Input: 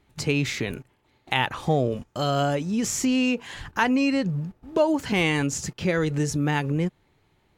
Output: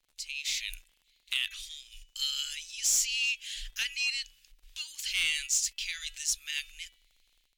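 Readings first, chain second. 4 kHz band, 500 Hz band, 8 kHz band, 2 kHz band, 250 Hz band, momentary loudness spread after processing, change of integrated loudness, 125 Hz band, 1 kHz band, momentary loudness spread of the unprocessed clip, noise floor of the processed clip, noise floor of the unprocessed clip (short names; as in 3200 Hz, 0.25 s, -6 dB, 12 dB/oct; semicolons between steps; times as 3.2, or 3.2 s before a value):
+2.0 dB, under -40 dB, +3.5 dB, -5.5 dB, under -40 dB, 17 LU, -5.5 dB, under -35 dB, -33.0 dB, 7 LU, -72 dBFS, -66 dBFS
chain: inverse Chebyshev band-stop 120–750 Hz, stop band 70 dB; de-hum 328.4 Hz, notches 11; AGC gain up to 13 dB; crackle 42/s -44 dBFS; soft clip -11.5 dBFS, distortion -16 dB; gain -7 dB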